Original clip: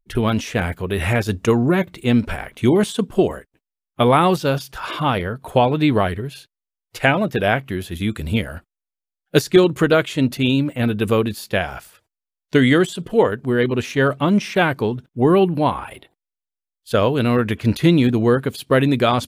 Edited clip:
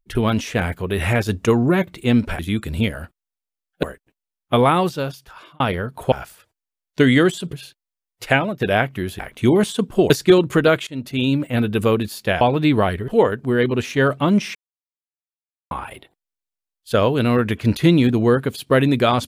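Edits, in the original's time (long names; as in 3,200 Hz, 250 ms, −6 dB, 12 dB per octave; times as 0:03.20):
0:02.39–0:03.30: swap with 0:07.92–0:09.36
0:04.01–0:05.07: fade out
0:05.59–0:06.26: swap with 0:11.67–0:13.08
0:07.04–0:07.33: fade out, to −10 dB
0:10.13–0:10.61: fade in, from −20 dB
0:14.55–0:15.71: silence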